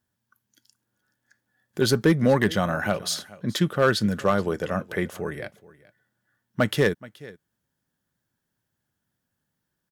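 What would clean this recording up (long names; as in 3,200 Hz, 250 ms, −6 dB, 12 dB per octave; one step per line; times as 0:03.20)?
clipped peaks rebuilt −10.5 dBFS
echo removal 426 ms −21 dB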